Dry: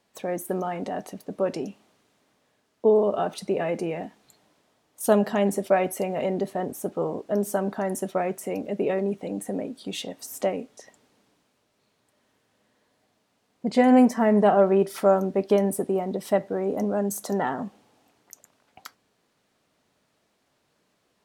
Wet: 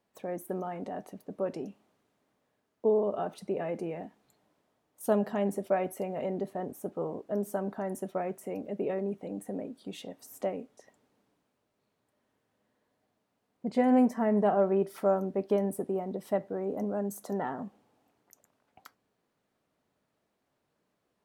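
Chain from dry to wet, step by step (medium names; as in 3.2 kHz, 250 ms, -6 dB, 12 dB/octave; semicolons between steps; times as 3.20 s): peaking EQ 5.4 kHz -7.5 dB 2.8 oct; trim -6.5 dB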